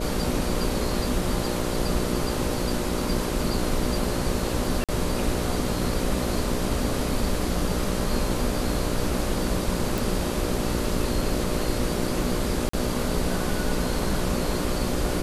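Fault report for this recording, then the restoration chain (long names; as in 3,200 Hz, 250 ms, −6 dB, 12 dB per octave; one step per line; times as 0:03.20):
mains buzz 60 Hz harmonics 10 −30 dBFS
0:04.84–0:04.89: drop-out 46 ms
0:09.98: click
0:12.69–0:12.73: drop-out 44 ms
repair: click removal
hum removal 60 Hz, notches 10
repair the gap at 0:04.84, 46 ms
repair the gap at 0:12.69, 44 ms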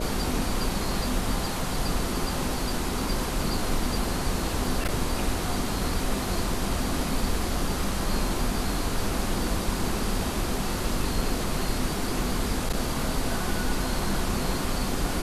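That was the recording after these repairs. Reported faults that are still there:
none of them is left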